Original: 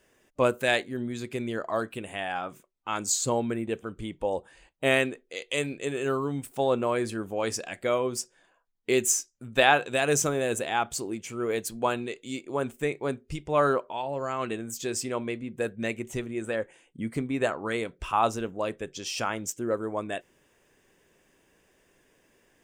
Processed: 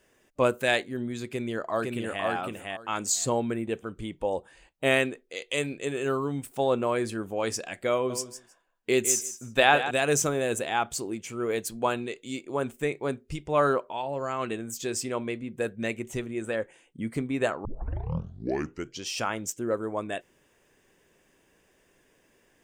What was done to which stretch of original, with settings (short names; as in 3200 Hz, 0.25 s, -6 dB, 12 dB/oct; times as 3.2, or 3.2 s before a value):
1.31–2.25 echo throw 0.51 s, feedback 15%, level -2 dB
7.94–9.91 feedback echo 0.158 s, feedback 15%, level -11 dB
17.65 tape start 1.41 s